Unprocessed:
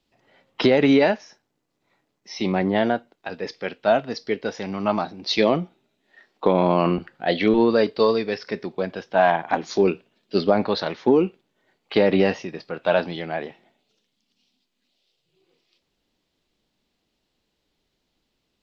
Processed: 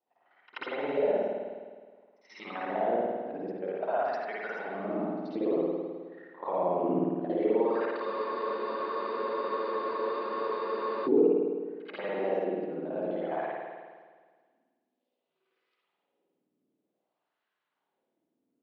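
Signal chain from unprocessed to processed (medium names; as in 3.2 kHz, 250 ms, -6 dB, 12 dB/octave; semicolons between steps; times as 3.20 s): time reversed locally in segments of 51 ms; high-pass 120 Hz; peak limiter -14 dBFS, peak gain reduction 9 dB; LFO band-pass sine 0.53 Hz 270–1500 Hz; reverse echo 83 ms -18 dB; spring tank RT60 1.6 s, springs 52 ms, chirp 50 ms, DRR -5.5 dB; spectral freeze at 8.09 s, 2.98 s; trim -3 dB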